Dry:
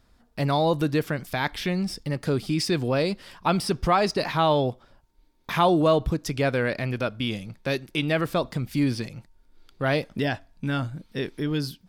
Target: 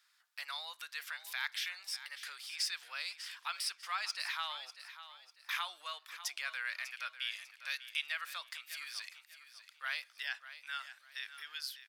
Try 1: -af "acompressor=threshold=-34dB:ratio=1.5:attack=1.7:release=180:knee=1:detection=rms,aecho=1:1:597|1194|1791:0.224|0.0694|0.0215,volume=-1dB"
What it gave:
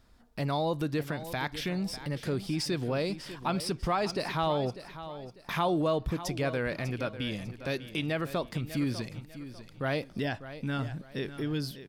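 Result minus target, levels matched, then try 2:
1,000 Hz band +3.0 dB
-af "acompressor=threshold=-34dB:ratio=1.5:attack=1.7:release=180:knee=1:detection=rms,highpass=frequency=1400:width=0.5412,highpass=frequency=1400:width=1.3066,aecho=1:1:597|1194|1791:0.224|0.0694|0.0215,volume=-1dB"

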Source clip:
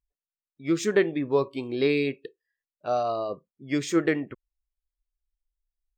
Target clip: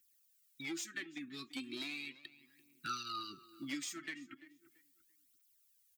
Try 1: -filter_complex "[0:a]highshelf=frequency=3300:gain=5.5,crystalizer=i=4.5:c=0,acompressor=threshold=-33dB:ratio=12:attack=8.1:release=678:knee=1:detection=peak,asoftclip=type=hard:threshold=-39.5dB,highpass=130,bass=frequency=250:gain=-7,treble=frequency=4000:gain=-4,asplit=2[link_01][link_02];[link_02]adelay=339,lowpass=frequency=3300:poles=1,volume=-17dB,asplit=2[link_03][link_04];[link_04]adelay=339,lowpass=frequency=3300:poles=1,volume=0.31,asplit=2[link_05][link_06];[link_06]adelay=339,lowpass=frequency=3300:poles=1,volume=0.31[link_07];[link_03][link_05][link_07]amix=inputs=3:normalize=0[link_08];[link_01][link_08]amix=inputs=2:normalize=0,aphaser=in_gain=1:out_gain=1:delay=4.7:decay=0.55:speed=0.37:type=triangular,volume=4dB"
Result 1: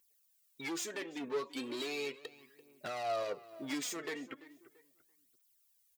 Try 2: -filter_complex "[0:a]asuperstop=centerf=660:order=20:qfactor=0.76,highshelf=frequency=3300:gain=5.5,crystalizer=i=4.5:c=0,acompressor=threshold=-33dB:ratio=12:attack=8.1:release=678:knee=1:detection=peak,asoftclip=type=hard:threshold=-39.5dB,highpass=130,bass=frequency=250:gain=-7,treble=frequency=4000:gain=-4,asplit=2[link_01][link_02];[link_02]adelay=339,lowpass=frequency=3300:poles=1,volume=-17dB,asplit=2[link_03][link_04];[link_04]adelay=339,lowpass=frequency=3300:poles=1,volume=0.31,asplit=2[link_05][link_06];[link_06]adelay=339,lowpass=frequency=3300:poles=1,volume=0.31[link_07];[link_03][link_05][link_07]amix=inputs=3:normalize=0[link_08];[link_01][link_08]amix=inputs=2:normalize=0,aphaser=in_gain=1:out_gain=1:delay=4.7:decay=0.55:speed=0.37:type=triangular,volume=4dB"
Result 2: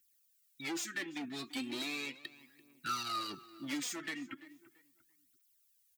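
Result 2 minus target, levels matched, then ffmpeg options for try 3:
downward compressor: peak gain reduction −8 dB
-filter_complex "[0:a]asuperstop=centerf=660:order=20:qfactor=0.76,highshelf=frequency=3300:gain=5.5,crystalizer=i=4.5:c=0,acompressor=threshold=-41.5dB:ratio=12:attack=8.1:release=678:knee=1:detection=peak,asoftclip=type=hard:threshold=-39.5dB,highpass=130,bass=frequency=250:gain=-7,treble=frequency=4000:gain=-4,asplit=2[link_01][link_02];[link_02]adelay=339,lowpass=frequency=3300:poles=1,volume=-17dB,asplit=2[link_03][link_04];[link_04]adelay=339,lowpass=frequency=3300:poles=1,volume=0.31,asplit=2[link_05][link_06];[link_06]adelay=339,lowpass=frequency=3300:poles=1,volume=0.31[link_07];[link_03][link_05][link_07]amix=inputs=3:normalize=0[link_08];[link_01][link_08]amix=inputs=2:normalize=0,aphaser=in_gain=1:out_gain=1:delay=4.7:decay=0.55:speed=0.37:type=triangular,volume=4dB"

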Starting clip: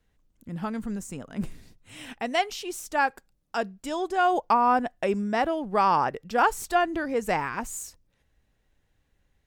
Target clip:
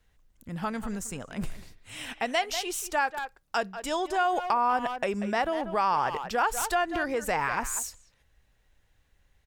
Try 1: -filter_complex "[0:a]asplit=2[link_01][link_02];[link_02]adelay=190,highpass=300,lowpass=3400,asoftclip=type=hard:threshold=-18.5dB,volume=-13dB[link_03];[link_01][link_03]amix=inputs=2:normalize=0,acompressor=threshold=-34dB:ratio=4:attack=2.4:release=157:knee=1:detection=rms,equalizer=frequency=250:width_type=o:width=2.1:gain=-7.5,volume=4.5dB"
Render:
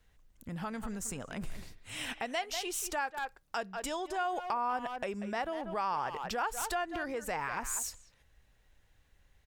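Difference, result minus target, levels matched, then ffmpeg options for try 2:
downward compressor: peak gain reduction +8 dB
-filter_complex "[0:a]asplit=2[link_01][link_02];[link_02]adelay=190,highpass=300,lowpass=3400,asoftclip=type=hard:threshold=-18.5dB,volume=-13dB[link_03];[link_01][link_03]amix=inputs=2:normalize=0,acompressor=threshold=-23.5dB:ratio=4:attack=2.4:release=157:knee=1:detection=rms,equalizer=frequency=250:width_type=o:width=2.1:gain=-7.5,volume=4.5dB"

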